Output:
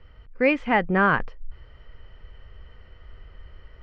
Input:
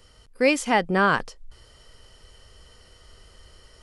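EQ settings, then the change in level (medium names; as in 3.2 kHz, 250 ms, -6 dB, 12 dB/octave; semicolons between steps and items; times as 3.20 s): four-pole ladder low-pass 2.8 kHz, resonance 30%; bass shelf 130 Hz +11 dB; +5.0 dB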